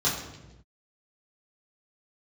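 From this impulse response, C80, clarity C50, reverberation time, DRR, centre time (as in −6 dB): 7.0 dB, 4.5 dB, non-exponential decay, −8.0 dB, 44 ms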